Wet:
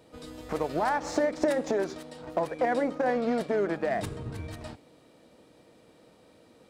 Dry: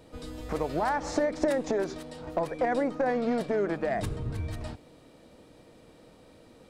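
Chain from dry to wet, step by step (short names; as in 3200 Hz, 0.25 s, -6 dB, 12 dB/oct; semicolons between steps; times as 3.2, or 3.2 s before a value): HPF 140 Hz 6 dB/oct; de-hum 273.9 Hz, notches 39; in parallel at -6 dB: crossover distortion -41 dBFS; on the sum: gain -2 dB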